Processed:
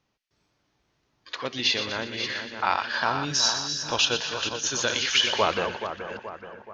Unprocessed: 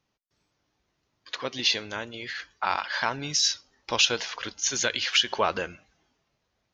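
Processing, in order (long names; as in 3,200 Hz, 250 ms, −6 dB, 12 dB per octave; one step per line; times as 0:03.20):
delay that plays each chunk backwards 326 ms, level −8.5 dB
harmonic and percussive parts rebalanced harmonic −6 dB
high-shelf EQ 8,400 Hz −8 dB
harmonic and percussive parts rebalanced harmonic +9 dB
0:02.73–0:04.92: parametric band 2,100 Hz −13.5 dB 0.21 octaves
echo with a time of its own for lows and highs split 1,800 Hz, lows 427 ms, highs 121 ms, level −9 dB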